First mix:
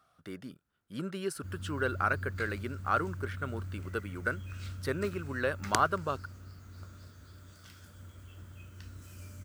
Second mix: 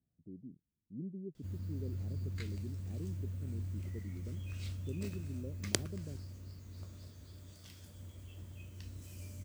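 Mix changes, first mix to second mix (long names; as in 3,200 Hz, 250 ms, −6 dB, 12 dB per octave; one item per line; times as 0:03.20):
speech: add transistor ladder low-pass 350 Hz, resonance 20%
master: add parametric band 1,400 Hz −15 dB 0.53 octaves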